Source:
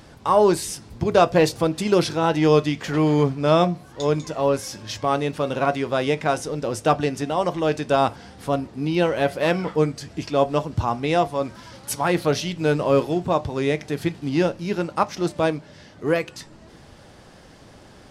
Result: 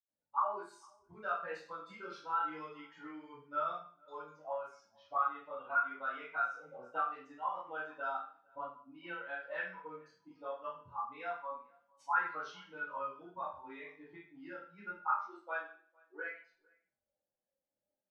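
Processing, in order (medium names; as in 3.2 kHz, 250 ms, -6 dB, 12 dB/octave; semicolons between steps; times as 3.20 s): expander on every frequency bin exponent 2; level-controlled noise filter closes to 2.2 kHz, open at -22 dBFS; compression 3:1, threshold -29 dBFS, peak gain reduction 11.5 dB; chorus 0.25 Hz, delay 19 ms, depth 7.5 ms; auto-wah 570–1400 Hz, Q 6.6, up, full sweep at -31.5 dBFS; 14.84–16.17 s: brick-wall FIR high-pass 290 Hz; echo from a far wall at 78 m, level -28 dB; reverberation RT60 0.45 s, pre-delay 77 ms; trim +11 dB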